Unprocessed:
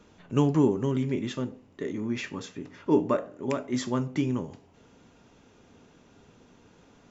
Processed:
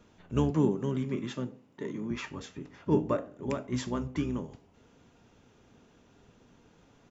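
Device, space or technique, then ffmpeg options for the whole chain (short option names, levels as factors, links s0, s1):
octave pedal: -filter_complex "[0:a]asplit=2[s0][s1];[s1]asetrate=22050,aresample=44100,atempo=2,volume=0.501[s2];[s0][s2]amix=inputs=2:normalize=0,asettb=1/sr,asplit=3[s3][s4][s5];[s3]atrim=end=0.504[s6];[s4]atrim=start=0.5:end=2.11,asetpts=PTS-STARTPTS,afade=t=in:d=0.004:c=qsin,afade=t=out:st=1.606:d=0.004:c=qsin,highpass=f=130:w=0.5412,highpass=f=130:w=1.3066[s7];[s5]atrim=start=2.106[s8];[s6][s7]acrossfade=d=0.004:c1=hsin:c2=qsin[s9];[s9][s8]acrossfade=d=0.004:c1=qsin:c2=hsin,volume=0.596"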